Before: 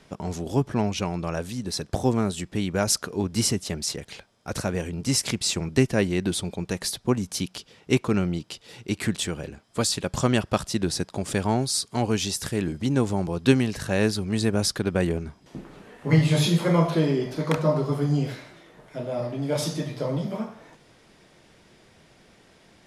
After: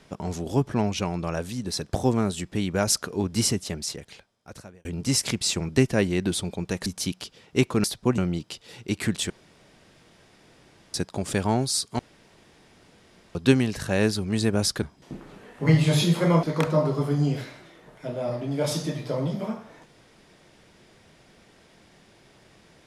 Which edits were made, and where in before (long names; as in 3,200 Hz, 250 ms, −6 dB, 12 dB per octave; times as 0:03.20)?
0:03.49–0:04.85: fade out
0:06.86–0:07.20: move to 0:08.18
0:09.30–0:10.94: fill with room tone
0:11.99–0:13.35: fill with room tone
0:14.82–0:15.26: remove
0:16.87–0:17.34: remove